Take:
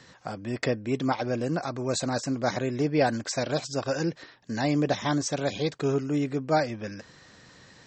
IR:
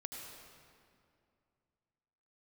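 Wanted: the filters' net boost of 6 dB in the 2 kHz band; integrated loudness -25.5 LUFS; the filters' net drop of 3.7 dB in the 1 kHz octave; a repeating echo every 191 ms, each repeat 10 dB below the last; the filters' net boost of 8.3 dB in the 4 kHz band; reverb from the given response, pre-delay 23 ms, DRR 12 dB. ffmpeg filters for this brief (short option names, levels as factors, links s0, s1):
-filter_complex "[0:a]equalizer=f=1000:t=o:g=-8,equalizer=f=2000:t=o:g=8.5,equalizer=f=4000:t=o:g=8.5,aecho=1:1:191|382|573|764:0.316|0.101|0.0324|0.0104,asplit=2[s0][s1];[1:a]atrim=start_sample=2205,adelay=23[s2];[s1][s2]afir=irnorm=-1:irlink=0,volume=0.316[s3];[s0][s3]amix=inputs=2:normalize=0,volume=1.12"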